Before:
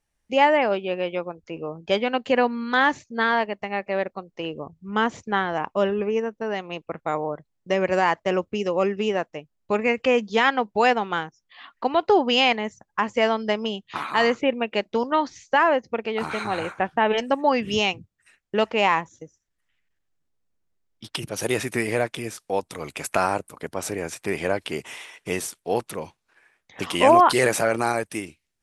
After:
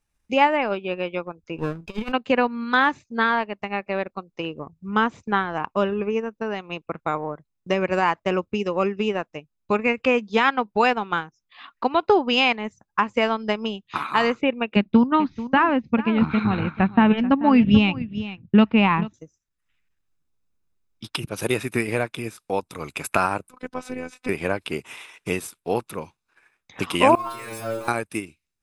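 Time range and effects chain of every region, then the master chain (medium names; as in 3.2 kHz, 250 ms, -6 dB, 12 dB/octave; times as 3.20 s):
1.58–2.12 s: comb filter that takes the minimum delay 0.39 ms + compressor with a negative ratio -28 dBFS, ratio -0.5
14.76–19.14 s: low-pass 4 kHz 24 dB/octave + resonant low shelf 320 Hz +10 dB, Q 1.5 + delay 436 ms -13.5 dB
23.50–24.29 s: robot voice 253 Hz + distance through air 60 m
27.15–27.88 s: jump at every zero crossing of -21 dBFS + inharmonic resonator 110 Hz, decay 0.76 s, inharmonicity 0.002
whole clip: dynamic bell 6.2 kHz, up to -6 dB, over -49 dBFS, Q 1.7; comb 0.8 ms, depth 32%; transient shaper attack +3 dB, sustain -5 dB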